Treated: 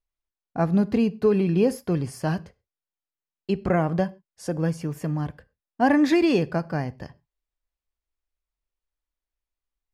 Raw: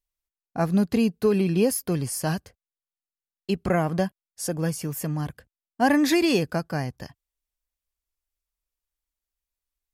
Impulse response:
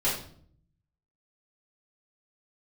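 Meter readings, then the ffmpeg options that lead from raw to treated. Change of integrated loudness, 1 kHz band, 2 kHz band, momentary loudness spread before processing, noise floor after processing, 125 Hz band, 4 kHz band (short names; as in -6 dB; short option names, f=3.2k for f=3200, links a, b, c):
+0.5 dB, +0.5 dB, -1.0 dB, 13 LU, under -85 dBFS, +1.0 dB, -5.5 dB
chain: -filter_complex "[0:a]aemphasis=mode=reproduction:type=75fm,asplit=2[a][b];[1:a]atrim=start_sample=2205,atrim=end_sample=6174[c];[b][c]afir=irnorm=-1:irlink=0,volume=-26.5dB[d];[a][d]amix=inputs=2:normalize=0"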